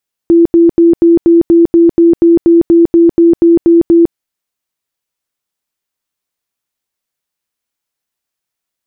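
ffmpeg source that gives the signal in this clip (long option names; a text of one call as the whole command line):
ffmpeg -f lavfi -i "aevalsrc='0.75*sin(2*PI*337*mod(t,0.24))*lt(mod(t,0.24),52/337)':duration=3.84:sample_rate=44100" out.wav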